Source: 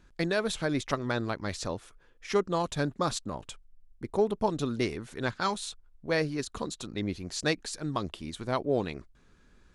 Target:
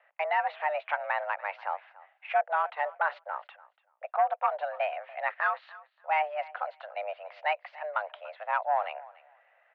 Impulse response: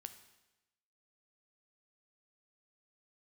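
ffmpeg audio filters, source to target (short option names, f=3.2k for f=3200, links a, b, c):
-filter_complex "[0:a]asoftclip=type=tanh:threshold=-20dB,asplit=2[a][b];[b]aecho=0:1:289|578:0.0944|0.016[c];[a][c]amix=inputs=2:normalize=0,highpass=f=320:t=q:w=0.5412,highpass=f=320:t=q:w=1.307,lowpass=f=2.4k:t=q:w=0.5176,lowpass=f=2.4k:t=q:w=0.7071,lowpass=f=2.4k:t=q:w=1.932,afreqshift=300,volume=3.5dB"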